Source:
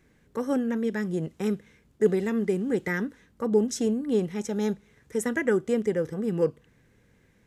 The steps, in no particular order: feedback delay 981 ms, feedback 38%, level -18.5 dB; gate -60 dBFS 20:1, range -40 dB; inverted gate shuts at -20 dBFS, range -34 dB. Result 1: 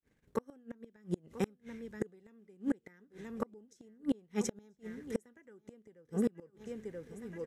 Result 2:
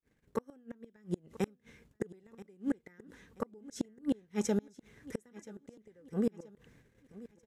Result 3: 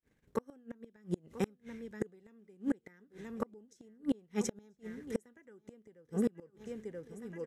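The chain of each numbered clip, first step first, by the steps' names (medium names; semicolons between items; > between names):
feedback delay > gate > inverted gate; gate > inverted gate > feedback delay; gate > feedback delay > inverted gate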